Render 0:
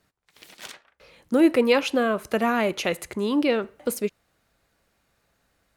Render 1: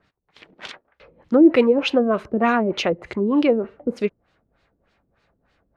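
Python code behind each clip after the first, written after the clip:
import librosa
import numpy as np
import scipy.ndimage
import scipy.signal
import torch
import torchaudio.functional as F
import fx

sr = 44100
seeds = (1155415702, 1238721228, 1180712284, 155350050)

y = fx.filter_lfo_lowpass(x, sr, shape='sine', hz=3.3, low_hz=300.0, high_hz=4300.0, q=1.2)
y = y * 10.0 ** (4.0 / 20.0)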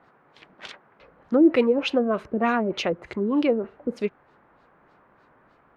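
y = fx.dmg_noise_band(x, sr, seeds[0], low_hz=120.0, high_hz=1500.0, level_db=-55.0)
y = y * 10.0 ** (-4.0 / 20.0)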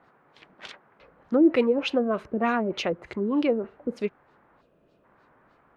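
y = fx.spec_box(x, sr, start_s=4.62, length_s=0.43, low_hz=700.0, high_hz=2400.0, gain_db=-13)
y = y * 10.0 ** (-2.0 / 20.0)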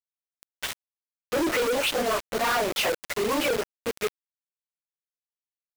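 y = fx.phase_scramble(x, sr, seeds[1], window_ms=50)
y = scipy.signal.sosfilt(scipy.signal.butter(2, 640.0, 'highpass', fs=sr, output='sos'), y)
y = fx.quant_companded(y, sr, bits=2)
y = y * 10.0 ** (2.0 / 20.0)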